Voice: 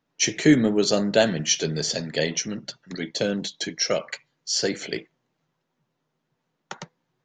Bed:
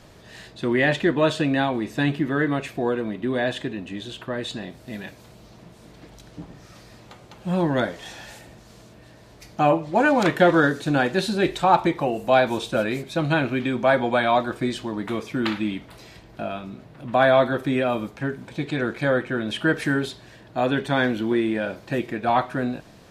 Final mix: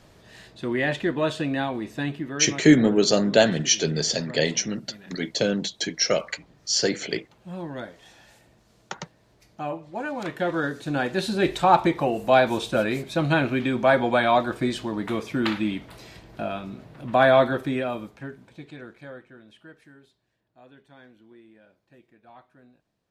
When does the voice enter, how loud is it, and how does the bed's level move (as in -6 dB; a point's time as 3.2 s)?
2.20 s, +1.5 dB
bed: 1.85 s -4.5 dB
2.78 s -12.5 dB
10.13 s -12.5 dB
11.52 s 0 dB
17.42 s 0 dB
19.93 s -29.5 dB